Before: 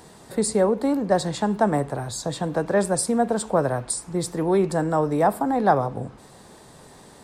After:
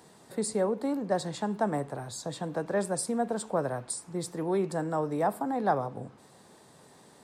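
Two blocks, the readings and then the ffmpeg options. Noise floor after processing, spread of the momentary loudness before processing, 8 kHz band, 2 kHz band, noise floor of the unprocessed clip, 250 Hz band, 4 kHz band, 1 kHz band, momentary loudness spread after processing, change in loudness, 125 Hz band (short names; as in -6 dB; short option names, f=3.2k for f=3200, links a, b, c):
-57 dBFS, 8 LU, -8.0 dB, -8.0 dB, -48 dBFS, -8.0 dB, -8.0 dB, -8.0 dB, 8 LU, -8.0 dB, -9.0 dB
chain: -af "highpass=110,volume=-8dB"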